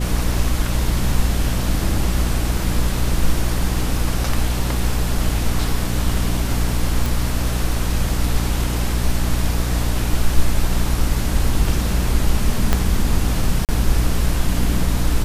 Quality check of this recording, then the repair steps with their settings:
hum 60 Hz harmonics 5 -22 dBFS
7.06 pop
12.73 pop -2 dBFS
13.65–13.69 gap 38 ms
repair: de-click; de-hum 60 Hz, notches 5; interpolate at 13.65, 38 ms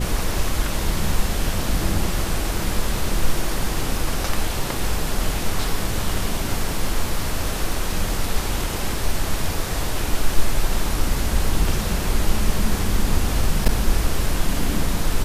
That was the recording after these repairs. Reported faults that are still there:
12.73 pop

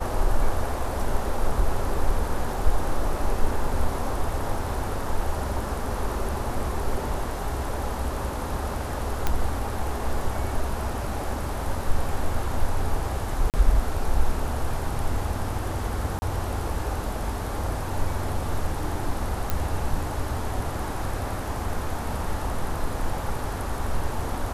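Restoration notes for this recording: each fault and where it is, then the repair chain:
9.27 pop -9 dBFS
13.5–13.54 gap 38 ms
16.19–16.22 gap 30 ms
19.5 pop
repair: de-click; interpolate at 13.5, 38 ms; interpolate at 16.19, 30 ms

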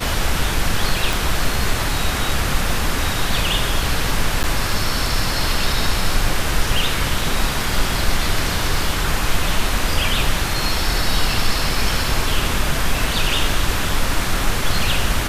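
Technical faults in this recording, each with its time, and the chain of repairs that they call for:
1.13 pop
4.43–4.44 gap 8.9 ms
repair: de-click; interpolate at 4.43, 8.9 ms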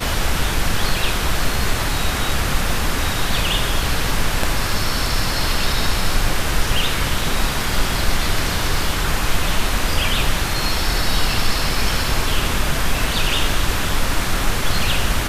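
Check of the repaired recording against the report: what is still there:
1.13 pop

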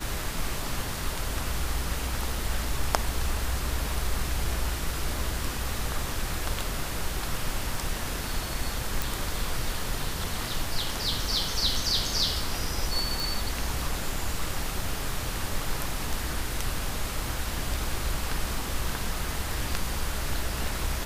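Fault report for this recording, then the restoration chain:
9.02 pop
13.2 pop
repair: de-click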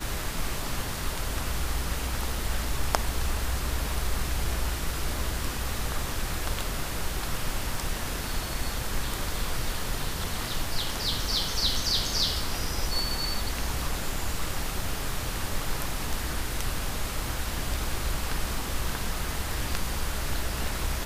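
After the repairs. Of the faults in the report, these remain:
none

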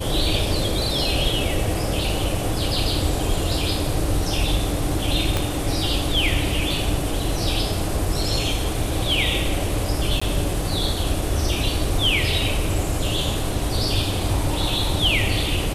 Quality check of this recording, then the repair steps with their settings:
5.37 pop -7 dBFS
10.2–10.21 gap 15 ms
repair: de-click; interpolate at 10.2, 15 ms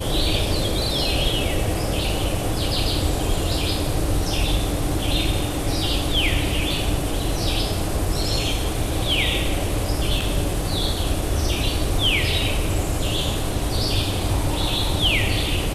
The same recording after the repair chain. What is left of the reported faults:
5.37 pop

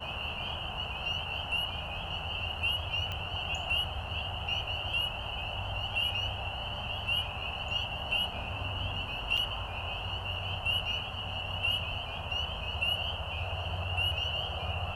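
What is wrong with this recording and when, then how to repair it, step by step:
3.12 pop -23 dBFS
9.37–9.38 gap 6 ms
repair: de-click; interpolate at 9.37, 6 ms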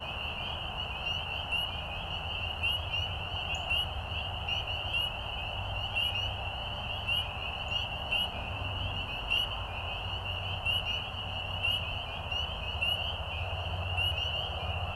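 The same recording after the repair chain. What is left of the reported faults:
none

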